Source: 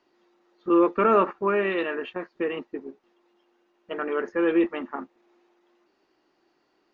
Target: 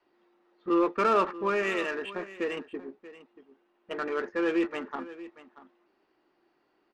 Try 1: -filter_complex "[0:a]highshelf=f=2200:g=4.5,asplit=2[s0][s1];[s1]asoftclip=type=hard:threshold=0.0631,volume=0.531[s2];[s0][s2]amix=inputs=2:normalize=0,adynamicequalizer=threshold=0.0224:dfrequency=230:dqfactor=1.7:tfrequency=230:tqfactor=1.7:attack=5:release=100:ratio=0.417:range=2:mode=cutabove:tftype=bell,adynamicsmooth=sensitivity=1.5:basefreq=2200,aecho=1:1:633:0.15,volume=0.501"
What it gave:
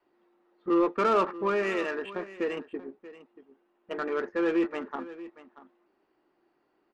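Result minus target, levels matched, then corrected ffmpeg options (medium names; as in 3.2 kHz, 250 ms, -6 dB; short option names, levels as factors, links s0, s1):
hard clipper: distortion -4 dB; 4 kHz band -2.5 dB
-filter_complex "[0:a]highshelf=f=2200:g=11.5,asplit=2[s0][s1];[s1]asoftclip=type=hard:threshold=0.0224,volume=0.531[s2];[s0][s2]amix=inputs=2:normalize=0,adynamicequalizer=threshold=0.0224:dfrequency=230:dqfactor=1.7:tfrequency=230:tqfactor=1.7:attack=5:release=100:ratio=0.417:range=2:mode=cutabove:tftype=bell,adynamicsmooth=sensitivity=1.5:basefreq=2200,aecho=1:1:633:0.15,volume=0.501"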